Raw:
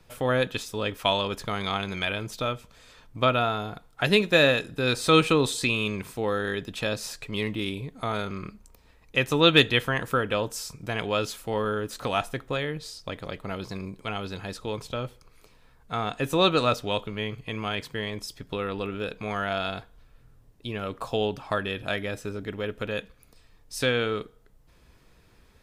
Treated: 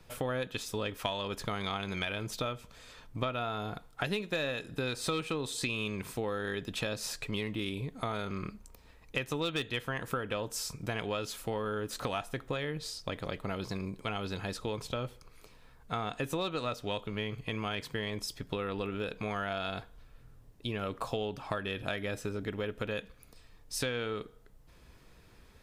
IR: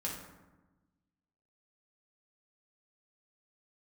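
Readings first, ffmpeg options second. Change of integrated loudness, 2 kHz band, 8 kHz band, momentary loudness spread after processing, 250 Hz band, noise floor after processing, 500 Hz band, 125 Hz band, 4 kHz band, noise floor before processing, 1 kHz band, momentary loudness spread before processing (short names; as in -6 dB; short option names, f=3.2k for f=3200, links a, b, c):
-9.0 dB, -9.5 dB, -3.5 dB, 5 LU, -8.0 dB, -58 dBFS, -9.0 dB, -6.5 dB, -10.0 dB, -58 dBFS, -8.5 dB, 15 LU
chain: -af "aeval=exprs='0.631*(cos(1*acos(clip(val(0)/0.631,-1,1)))-cos(1*PI/2))+0.0251*(cos(4*acos(clip(val(0)/0.631,-1,1)))-cos(4*PI/2))':c=same,volume=10dB,asoftclip=hard,volume=-10dB,acompressor=threshold=-31dB:ratio=6"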